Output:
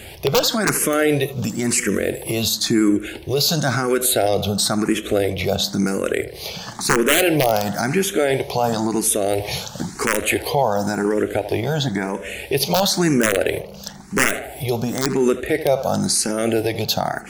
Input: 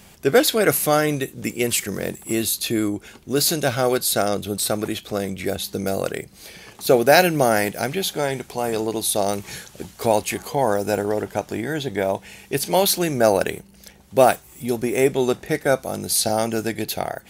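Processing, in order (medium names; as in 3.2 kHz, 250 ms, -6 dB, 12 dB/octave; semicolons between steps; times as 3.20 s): treble shelf 11 kHz -8 dB; in parallel at +1.5 dB: compression 5:1, threshold -33 dBFS, peak gain reduction 21 dB; on the sum: integer overflow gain 5.5 dB; on a send: tape echo 77 ms, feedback 60%, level -15 dB, low-pass 2.3 kHz; on the sum: loudness maximiser +12 dB; barber-pole phaser +0.97 Hz; trim -4.5 dB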